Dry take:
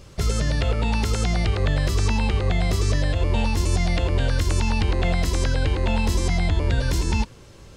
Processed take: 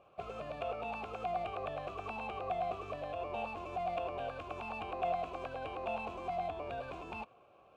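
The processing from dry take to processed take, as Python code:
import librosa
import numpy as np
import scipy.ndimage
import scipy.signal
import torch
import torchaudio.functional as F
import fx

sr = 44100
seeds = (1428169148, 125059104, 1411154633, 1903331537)

y = scipy.ndimage.median_filter(x, 9, mode='constant')
y = fx.vowel_filter(y, sr, vowel='a')
y = y * 10.0 ** (1.5 / 20.0)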